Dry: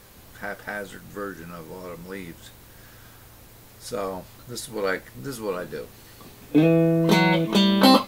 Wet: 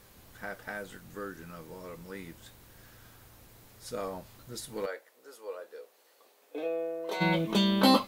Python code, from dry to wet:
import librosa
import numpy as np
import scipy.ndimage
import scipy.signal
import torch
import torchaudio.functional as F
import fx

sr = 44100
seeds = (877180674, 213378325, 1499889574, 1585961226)

y = fx.ladder_highpass(x, sr, hz=430.0, resonance_pct=45, at=(4.85, 7.2), fade=0.02)
y = F.gain(torch.from_numpy(y), -7.0).numpy()